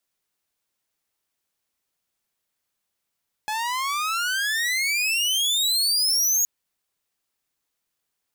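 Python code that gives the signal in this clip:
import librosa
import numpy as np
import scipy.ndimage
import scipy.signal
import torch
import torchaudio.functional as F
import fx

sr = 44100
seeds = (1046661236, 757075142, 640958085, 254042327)

y = fx.riser_tone(sr, length_s=2.97, level_db=-14, wave='saw', hz=842.0, rise_st=36.0, swell_db=8)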